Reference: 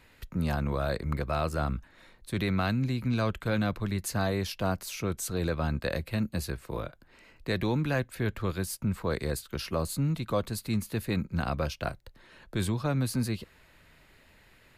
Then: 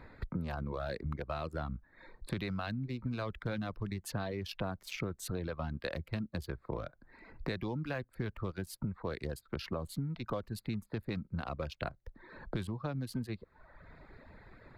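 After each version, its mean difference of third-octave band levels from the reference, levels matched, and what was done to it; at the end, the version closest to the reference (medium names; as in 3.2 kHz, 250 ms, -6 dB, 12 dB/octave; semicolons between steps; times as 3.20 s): 6.0 dB: local Wiener filter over 15 samples; reverb removal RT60 0.79 s; resonant high shelf 5.1 kHz -6.5 dB, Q 1.5; compression 8:1, threshold -43 dBFS, peak gain reduction 19 dB; trim +8.5 dB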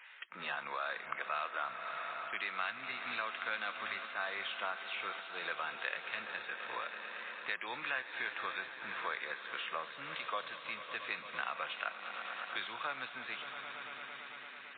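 16.0 dB: Chebyshev high-pass 1.4 kHz, order 2; on a send: echo with a slow build-up 112 ms, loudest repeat 5, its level -17 dB; on the sum: compression 2.5:1, threshold -44 dBFS, peak gain reduction 10 dB; trim +7.5 dB; MP3 16 kbps 8 kHz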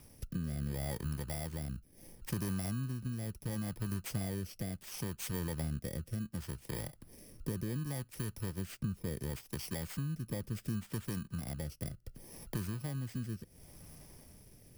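8.5 dB: bit-reversed sample order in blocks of 32 samples; peaking EQ 140 Hz +6 dB 1.6 oct; compression 5:1, threshold -39 dBFS, peak gain reduction 17.5 dB; rotary cabinet horn 0.7 Hz; trim +4 dB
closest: first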